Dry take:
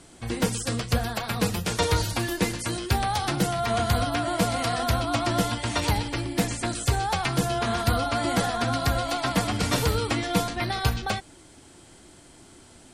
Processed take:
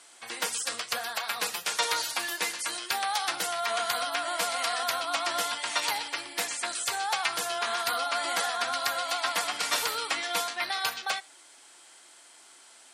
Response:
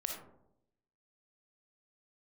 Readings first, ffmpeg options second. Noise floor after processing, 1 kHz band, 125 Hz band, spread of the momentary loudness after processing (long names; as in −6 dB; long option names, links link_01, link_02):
−54 dBFS, −2.5 dB, below −30 dB, 4 LU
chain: -filter_complex "[0:a]highpass=940,asplit=2[link_01][link_02];[1:a]atrim=start_sample=2205,atrim=end_sample=3969[link_03];[link_02][link_03]afir=irnorm=-1:irlink=0,volume=-18.5dB[link_04];[link_01][link_04]amix=inputs=2:normalize=0"